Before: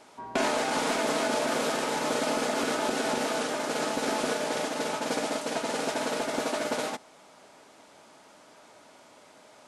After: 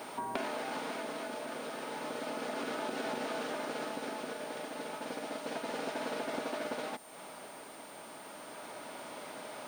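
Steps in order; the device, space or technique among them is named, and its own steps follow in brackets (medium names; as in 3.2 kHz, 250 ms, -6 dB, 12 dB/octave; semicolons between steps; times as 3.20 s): medium wave at night (band-pass 120–4300 Hz; compression 6:1, threshold -45 dBFS, peak gain reduction 20 dB; tremolo 0.32 Hz, depth 40%; whistle 9 kHz -66 dBFS; white noise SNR 21 dB); trim +9.5 dB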